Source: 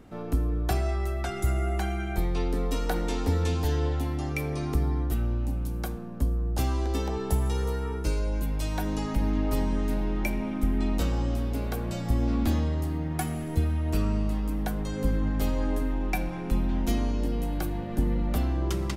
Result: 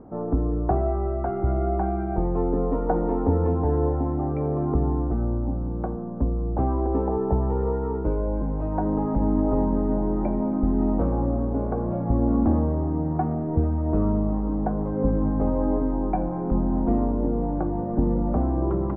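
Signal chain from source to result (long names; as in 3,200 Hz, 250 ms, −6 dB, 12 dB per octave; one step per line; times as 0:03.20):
low-pass filter 1,000 Hz 24 dB per octave
low-shelf EQ 120 Hz −9.5 dB
level +8.5 dB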